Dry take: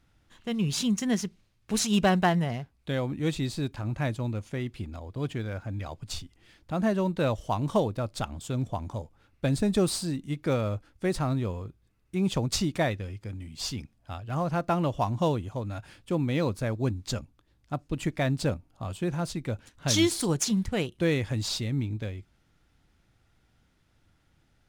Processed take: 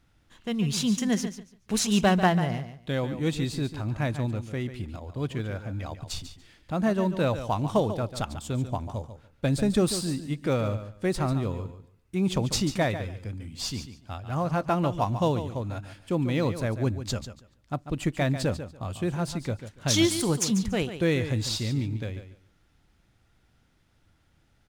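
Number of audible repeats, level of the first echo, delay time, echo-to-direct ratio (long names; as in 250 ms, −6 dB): 2, −11.0 dB, 143 ms, −11.0 dB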